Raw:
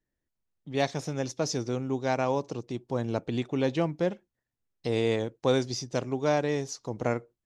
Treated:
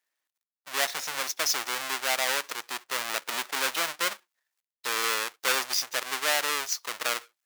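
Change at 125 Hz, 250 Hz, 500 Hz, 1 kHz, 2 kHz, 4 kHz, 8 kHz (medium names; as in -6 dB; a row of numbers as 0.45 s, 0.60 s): -28.0 dB, -17.5 dB, -9.0 dB, +3.0 dB, +10.5 dB, +10.5 dB, +11.5 dB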